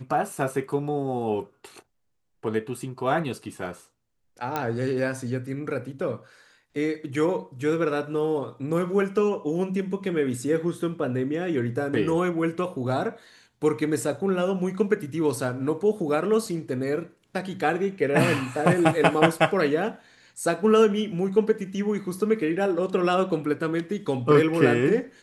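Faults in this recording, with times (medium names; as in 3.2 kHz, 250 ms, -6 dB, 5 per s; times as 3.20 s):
4.56 s: pop -13 dBFS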